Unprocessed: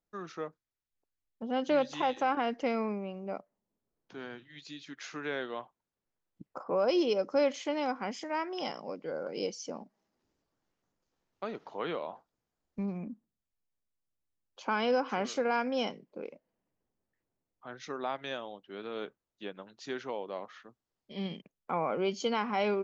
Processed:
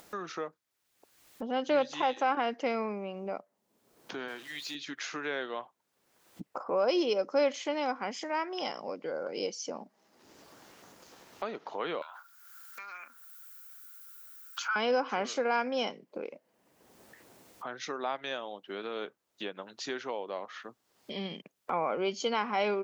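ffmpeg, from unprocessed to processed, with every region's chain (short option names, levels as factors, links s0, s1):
-filter_complex "[0:a]asettb=1/sr,asplit=3[s0][s1][s2];[s0]atrim=end=4.284[s3];[s1]atrim=start=4.28:end=4.75,asetpts=PTS-STARTPTS,afade=t=in:d=0.004:c=qsin,afade=t=out:st=0.466:d=0.004:c=qsin,aeval=exprs='val(0)+0.5*0.00211*sgn(val(0))':c=same,highpass=f=350:p=1[s4];[s2]atrim=start=4.746[s5];[s3][s4]acrossfade=d=0.004:c1=hsin:c2=qsin[s6];[s6][s5]acrossfade=d=0.004:c1=qsin:c2=hsin,asettb=1/sr,asplit=3[s7][s8][s9];[s7]atrim=end=12.024[s10];[s8]atrim=start=12.02:end=14.76,asetpts=PTS-STARTPTS,afade=t=in:d=0.004:c=qsin,afade=t=out:st=2.736:d=0.004:c=qsin,acompressor=threshold=0.00501:ratio=2.5:attack=3.2:release=140:knee=1:detection=peak,highpass=f=1400:t=q:w=13,aemphasis=mode=production:type=riaa[s11];[s9]atrim=start=14.756[s12];[s10][s11]acrossfade=d=0.004:c1=hsin:c2=qsin[s13];[s13][s12]acrossfade=d=0.004:c1=qsin:c2=hsin,highpass=f=350:p=1,acompressor=mode=upward:threshold=0.02:ratio=2.5,volume=1.26"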